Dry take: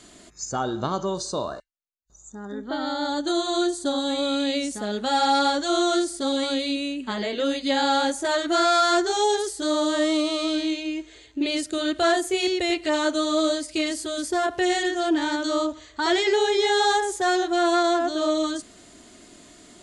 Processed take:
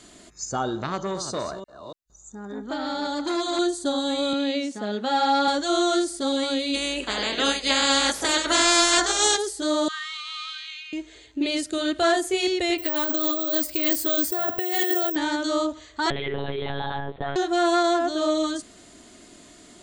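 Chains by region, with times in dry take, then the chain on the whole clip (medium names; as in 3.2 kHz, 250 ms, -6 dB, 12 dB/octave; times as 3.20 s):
0.78–3.59 s: chunks repeated in reverse 287 ms, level -11.5 dB + transformer saturation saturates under 1.1 kHz
4.33–5.48 s: high-pass 120 Hz 24 dB/octave + distance through air 95 m
6.73–9.36 s: spectral peaks clipped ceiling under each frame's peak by 25 dB + peaking EQ 370 Hz +5.5 dB 2.2 oct + band-stop 380 Hz, Q 10
9.88–10.93 s: steep high-pass 1.1 kHz 72 dB/octave + distance through air 130 m
12.78–15.16 s: peaking EQ 6.2 kHz -3 dB 0.94 oct + compressor with a negative ratio -27 dBFS + careless resampling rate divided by 2×, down filtered, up zero stuff
16.10–17.36 s: compression 5:1, threshold -26 dBFS + monotone LPC vocoder at 8 kHz 140 Hz
whole clip: none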